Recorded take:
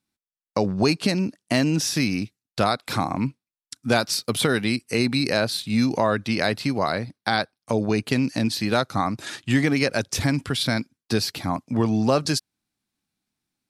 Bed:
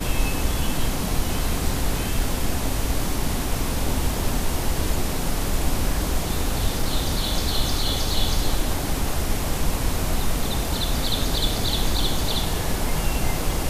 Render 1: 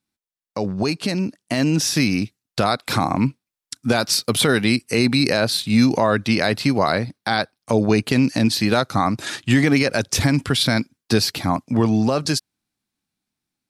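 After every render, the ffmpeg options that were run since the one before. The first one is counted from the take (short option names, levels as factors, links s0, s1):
-af "alimiter=limit=0.282:level=0:latency=1:release=55,dynaudnorm=f=110:g=31:m=2"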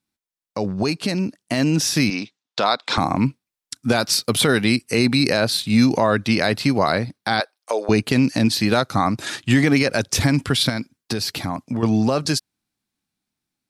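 -filter_complex "[0:a]asettb=1/sr,asplit=3[s0][s1][s2];[s0]atrim=end=2.104[s3];[s1]atrim=start=2.1:end=2.98,asetpts=PTS-STARTPTS,afade=t=in:d=0.004:c=qsin,afade=t=out:st=0.876:d=0.004:c=qsin,highpass=310,equalizer=f=350:t=q:w=4:g=-4,equalizer=f=960:t=q:w=4:g=5,equalizer=f=3500:t=q:w=4:g=6,lowpass=f=6700:w=0.5412,lowpass=f=6700:w=1.3066[s4];[s2]atrim=start=2.976[s5];[s3][s4]acrossfade=d=0.004:c1=hsin:c2=qsin[s6];[s6][s5]acrossfade=d=0.004:c1=qsin:c2=hsin,asettb=1/sr,asplit=3[s7][s8][s9];[s7]atrim=end=7.404[s10];[s8]atrim=start=7.4:end=7.89,asetpts=PTS-STARTPTS,afade=t=in:d=0.004:c=qsin,afade=t=out:st=0.486:d=0.004:c=qsin,highpass=f=440:w=0.5412,highpass=f=440:w=1.3066[s11];[s9]atrim=start=7.886[s12];[s10][s11]acrossfade=d=0.004:c1=hsin:c2=qsin[s13];[s13][s12]acrossfade=d=0.004:c1=qsin:c2=hsin,asettb=1/sr,asplit=3[s14][s15][s16];[s14]atrim=end=10.694[s17];[s15]atrim=start=10.69:end=11.83,asetpts=PTS-STARTPTS,afade=t=in:d=0.004:c=qsin,afade=t=out:st=1.136:d=0.004:c=qsin,acompressor=threshold=0.1:ratio=4:attack=3.2:release=140:knee=1:detection=peak[s18];[s16]atrim=start=11.826[s19];[s17][s18]acrossfade=d=0.004:c1=hsin:c2=qsin[s20];[s20][s19]acrossfade=d=0.004:c1=qsin:c2=hsin"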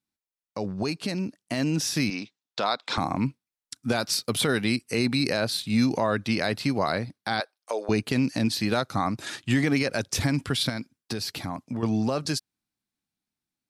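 -af "volume=0.447"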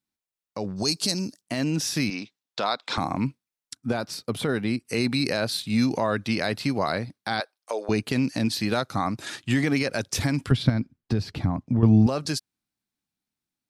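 -filter_complex "[0:a]asettb=1/sr,asplit=3[s0][s1][s2];[s0]atrim=end=0.764[s3];[s1]atrim=start=0.76:end=1.41,asetpts=PTS-STARTPTS,afade=t=in:d=0.004:c=qsin,afade=t=out:st=0.646:d=0.004:c=qsin,highshelf=f=3600:t=q:w=1.5:g=12.5[s4];[s2]atrim=start=1.406[s5];[s3][s4]acrossfade=d=0.004:c1=hsin:c2=qsin[s6];[s6][s5]acrossfade=d=0.004:c1=qsin:c2=hsin,asettb=1/sr,asplit=3[s7][s8][s9];[s7]atrim=end=3.754[s10];[s8]atrim=start=3.75:end=4.85,asetpts=PTS-STARTPTS,afade=t=in:d=0.004:c=qsin,afade=t=out:st=1.096:d=0.004:c=qsin,highshelf=f=2000:g=-10.5[s11];[s9]atrim=start=4.846[s12];[s10][s11]acrossfade=d=0.004:c1=hsin:c2=qsin[s13];[s13][s12]acrossfade=d=0.004:c1=qsin:c2=hsin,asettb=1/sr,asplit=3[s14][s15][s16];[s14]atrim=end=10.514[s17];[s15]atrim=start=10.51:end=12.07,asetpts=PTS-STARTPTS,afade=t=in:d=0.004:c=qsin,afade=t=out:st=1.556:d=0.004:c=qsin,aemphasis=mode=reproduction:type=riaa[s18];[s16]atrim=start=12.066[s19];[s17][s18]acrossfade=d=0.004:c1=hsin:c2=qsin[s20];[s20][s19]acrossfade=d=0.004:c1=qsin:c2=hsin"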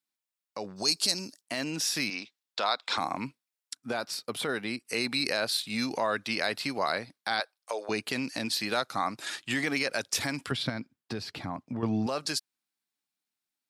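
-af "highpass=f=750:p=1,bandreject=f=6100:w=26"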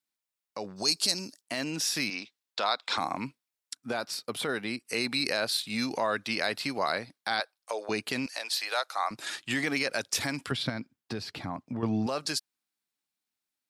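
-filter_complex "[0:a]asettb=1/sr,asplit=3[s0][s1][s2];[s0]atrim=end=8.264[s3];[s1]atrim=start=8.26:end=9.11,asetpts=PTS-STARTPTS,afade=t=in:d=0.004:c=qsin,afade=t=out:st=0.846:d=0.004:c=qsin,highpass=f=550:w=0.5412,highpass=f=550:w=1.3066[s4];[s2]atrim=start=9.106[s5];[s3][s4]acrossfade=d=0.004:c1=hsin:c2=qsin[s6];[s6][s5]acrossfade=d=0.004:c1=qsin:c2=hsin"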